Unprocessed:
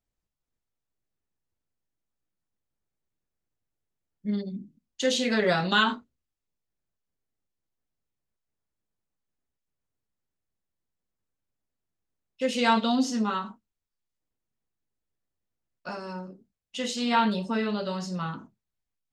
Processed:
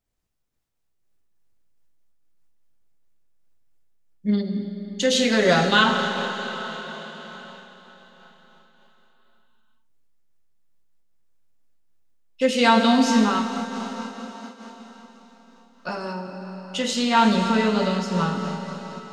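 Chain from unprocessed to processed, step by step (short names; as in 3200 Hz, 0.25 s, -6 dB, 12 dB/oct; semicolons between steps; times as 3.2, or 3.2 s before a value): digital reverb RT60 4.6 s, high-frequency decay 1×, pre-delay 25 ms, DRR 5 dB; noise-modulated level, depth 65%; gain +8.5 dB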